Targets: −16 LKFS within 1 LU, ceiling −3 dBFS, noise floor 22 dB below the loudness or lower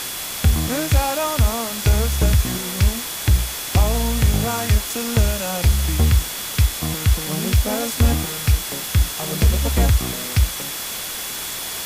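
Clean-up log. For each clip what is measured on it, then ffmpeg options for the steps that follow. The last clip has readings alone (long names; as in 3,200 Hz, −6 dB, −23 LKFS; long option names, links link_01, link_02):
interfering tone 3,400 Hz; level of the tone −37 dBFS; background noise floor −29 dBFS; target noise floor −42 dBFS; integrated loudness −20.0 LKFS; sample peak −5.5 dBFS; target loudness −16.0 LKFS
→ -af "bandreject=frequency=3400:width=30"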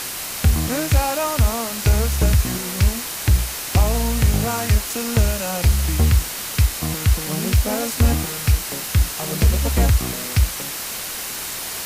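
interfering tone none found; background noise floor −29 dBFS; target noise floor −42 dBFS
→ -af "afftdn=noise_reduction=13:noise_floor=-29"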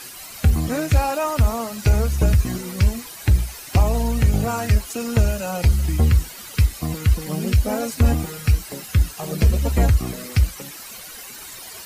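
background noise floor −38 dBFS; target noise floor −43 dBFS
→ -af "afftdn=noise_reduction=6:noise_floor=-38"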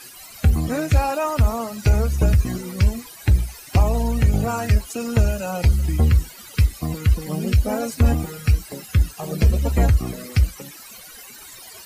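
background noise floor −42 dBFS; target noise floor −43 dBFS
→ -af "afftdn=noise_reduction=6:noise_floor=-42"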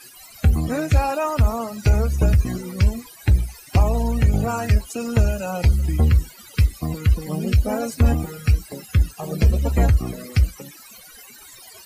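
background noise floor −45 dBFS; integrated loudness −21.0 LKFS; sample peak −6.5 dBFS; target loudness −16.0 LKFS
→ -af "volume=5dB,alimiter=limit=-3dB:level=0:latency=1"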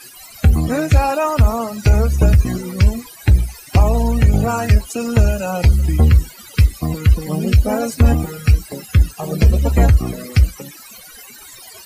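integrated loudness −16.5 LKFS; sample peak −3.0 dBFS; background noise floor −40 dBFS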